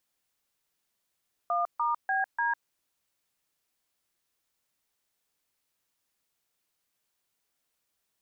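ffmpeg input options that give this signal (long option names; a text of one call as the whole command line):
ffmpeg -f lavfi -i "aevalsrc='0.0422*clip(min(mod(t,0.295),0.152-mod(t,0.295))/0.002,0,1)*(eq(floor(t/0.295),0)*(sin(2*PI*697*mod(t,0.295))+sin(2*PI*1209*mod(t,0.295)))+eq(floor(t/0.295),1)*(sin(2*PI*941*mod(t,0.295))+sin(2*PI*1209*mod(t,0.295)))+eq(floor(t/0.295),2)*(sin(2*PI*770*mod(t,0.295))+sin(2*PI*1633*mod(t,0.295)))+eq(floor(t/0.295),3)*(sin(2*PI*941*mod(t,0.295))+sin(2*PI*1633*mod(t,0.295))))':duration=1.18:sample_rate=44100" out.wav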